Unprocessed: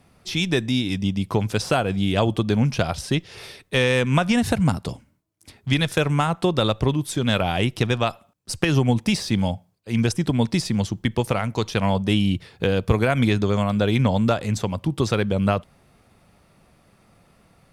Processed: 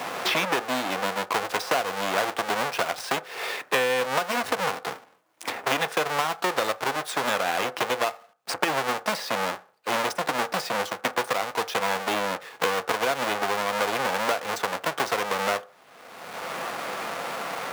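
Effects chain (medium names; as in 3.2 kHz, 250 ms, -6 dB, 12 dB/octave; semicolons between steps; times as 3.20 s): square wave that keeps the level; high-pass 750 Hz 12 dB/octave; treble shelf 2.8 kHz -10.5 dB; reverberation RT60 0.35 s, pre-delay 3 ms, DRR 12.5 dB; three bands compressed up and down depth 100%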